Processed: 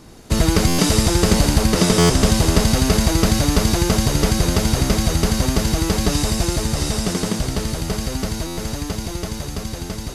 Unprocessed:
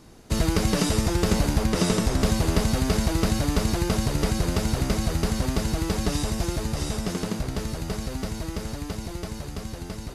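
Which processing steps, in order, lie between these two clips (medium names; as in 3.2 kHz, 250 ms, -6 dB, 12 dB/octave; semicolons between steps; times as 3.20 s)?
feedback echo behind a high-pass 84 ms, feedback 80%, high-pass 3 kHz, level -4 dB; buffer glitch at 0.67/1.98/8.46 s, samples 512, times 9; trim +6.5 dB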